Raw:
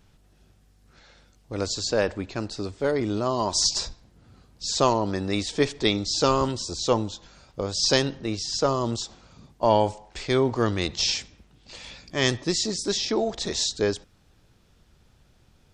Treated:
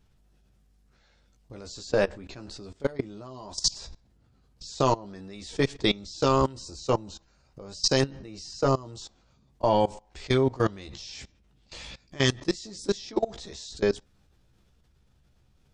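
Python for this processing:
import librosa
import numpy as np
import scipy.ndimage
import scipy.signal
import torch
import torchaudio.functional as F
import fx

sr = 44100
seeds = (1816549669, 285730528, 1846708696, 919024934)

y = fx.low_shelf(x, sr, hz=120.0, db=6.5)
y = fx.doubler(y, sr, ms=15.0, db=-5.5)
y = fx.level_steps(y, sr, step_db=21)
y = fx.notch(y, sr, hz=3400.0, q=5.9, at=(6.49, 8.96))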